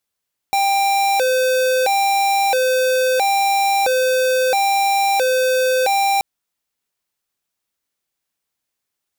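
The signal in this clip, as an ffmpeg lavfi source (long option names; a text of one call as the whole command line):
ffmpeg -f lavfi -i "aevalsrc='0.15*(2*lt(mod((652*t+139/0.75*(0.5-abs(mod(0.75*t,1)-0.5))),1),0.5)-1)':duration=5.68:sample_rate=44100" out.wav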